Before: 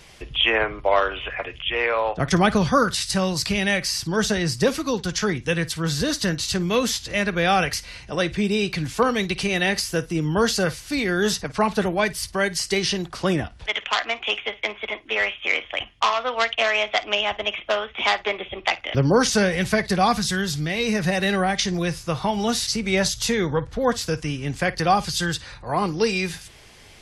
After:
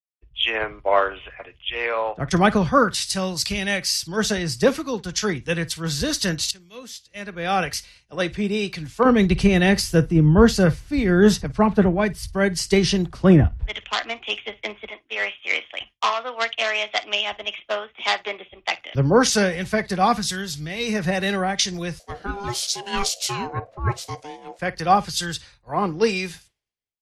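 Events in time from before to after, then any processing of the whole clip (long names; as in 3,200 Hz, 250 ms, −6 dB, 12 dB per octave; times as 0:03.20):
0:06.51–0:08.03: fade in, from −17 dB
0:09.05–0:14.89: low-shelf EQ 330 Hz +12 dB
0:21.99–0:24.59: ring modulation 600 Hz
whole clip: downward expander −34 dBFS; automatic gain control gain up to 6.5 dB; multiband upward and downward expander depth 100%; level −5.5 dB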